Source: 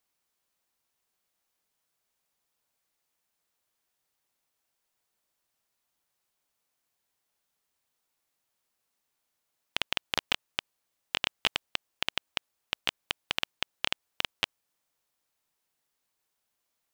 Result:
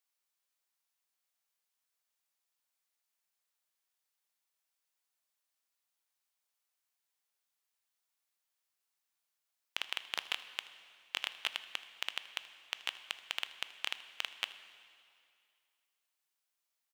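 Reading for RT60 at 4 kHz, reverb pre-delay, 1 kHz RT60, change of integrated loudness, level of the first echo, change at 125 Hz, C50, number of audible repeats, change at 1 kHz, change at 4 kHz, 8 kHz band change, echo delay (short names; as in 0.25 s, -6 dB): 2.2 s, 7 ms, 2.4 s, -6.5 dB, -20.5 dB, under -20 dB, 12.0 dB, 1, -8.5 dB, -6.5 dB, -5.5 dB, 79 ms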